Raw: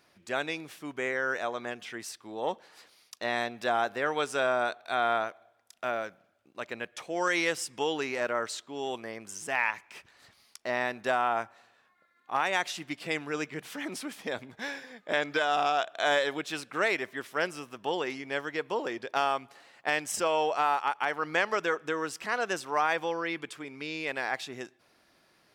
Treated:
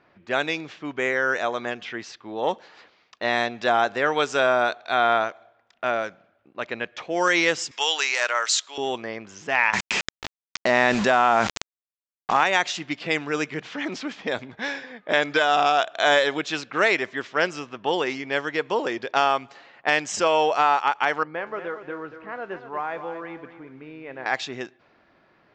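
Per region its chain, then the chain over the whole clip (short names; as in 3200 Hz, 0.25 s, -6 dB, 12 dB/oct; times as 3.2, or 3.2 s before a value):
7.71–8.78 HPF 590 Hz + tilt +4 dB/oct
9.73–12.44 bell 200 Hz +11.5 dB 0.27 oct + requantised 8-bit, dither none + fast leveller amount 70%
21.23–24.26 tape spacing loss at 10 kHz 45 dB + resonator 130 Hz, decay 0.33 s + lo-fi delay 0.235 s, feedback 35%, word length 10-bit, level -9.5 dB
whole clip: low-pass opened by the level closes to 1900 Hz, open at -27.5 dBFS; elliptic low-pass 7200 Hz, stop band 40 dB; gain +8 dB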